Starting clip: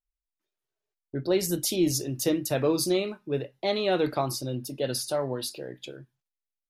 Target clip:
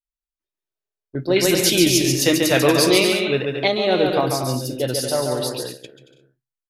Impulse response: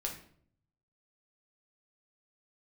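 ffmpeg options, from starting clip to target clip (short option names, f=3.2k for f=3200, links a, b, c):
-filter_complex "[0:a]aecho=1:1:140|231|290.2|328.6|353.6:0.631|0.398|0.251|0.158|0.1,agate=range=-13dB:threshold=-35dB:ratio=16:detection=peak,asettb=1/sr,asplit=3[a][b][c];[a]atrim=end=1.364[d];[b]atrim=start=1.36:end=3.68,asetpts=PTS-STARTPTS,afade=t=in:d=0.004:c=qsin,afade=t=out:st=2.316:d=0.004:c=qsin,equalizer=f=2.3k:w=0.6:g=11.5[e];[c]atrim=start=3.676[f];[d][e]acrossfade=d=0.004:c1=hsin:c2=qsin[g];[g][f]acrossfade=d=0.004:c1=qsin:c2=hsin,volume=5.5dB"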